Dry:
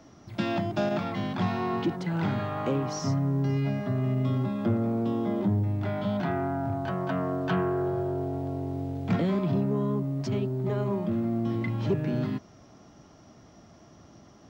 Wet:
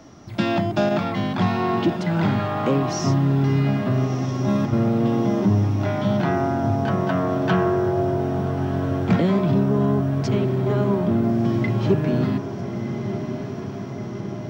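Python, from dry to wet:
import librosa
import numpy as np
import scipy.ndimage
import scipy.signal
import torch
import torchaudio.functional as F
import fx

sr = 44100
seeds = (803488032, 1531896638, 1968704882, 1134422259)

y = fx.over_compress(x, sr, threshold_db=-29.0, ratio=-0.5, at=(4.04, 4.73))
y = fx.echo_diffused(y, sr, ms=1348, feedback_pct=70, wet_db=-10)
y = y * 10.0 ** (7.0 / 20.0)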